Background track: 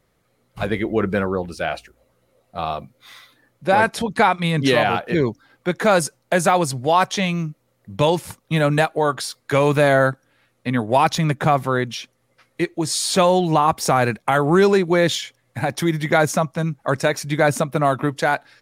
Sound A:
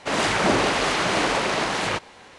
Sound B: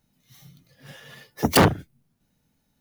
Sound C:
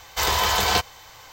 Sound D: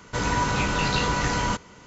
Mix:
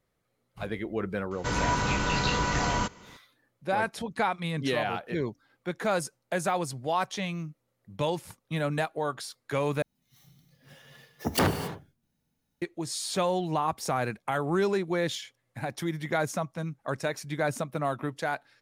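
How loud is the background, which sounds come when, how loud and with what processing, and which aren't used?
background track -11.5 dB
1.31 add D -3 dB
9.82 replace with B -8.5 dB + non-linear reverb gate 0.3 s flat, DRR 8 dB
not used: A, C

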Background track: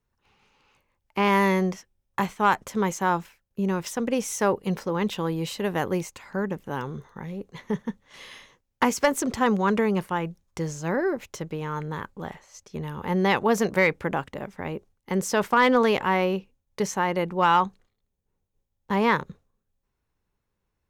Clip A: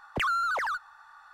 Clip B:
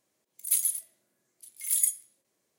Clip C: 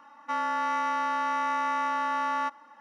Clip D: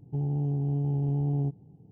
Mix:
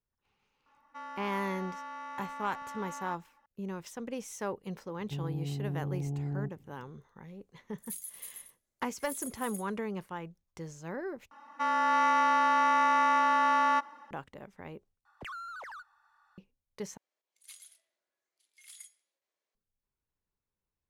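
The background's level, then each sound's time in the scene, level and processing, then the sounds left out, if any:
background track -13 dB
0.66 add C -14.5 dB
4.98 add D -7.5 dB
7.39 add B -16 dB + echo 0.321 s -4 dB
11.31 replace with C -1 dB + AGC gain up to 4 dB
15.05 replace with A -15 dB
16.97 replace with B -10 dB + BPF 590–4500 Hz

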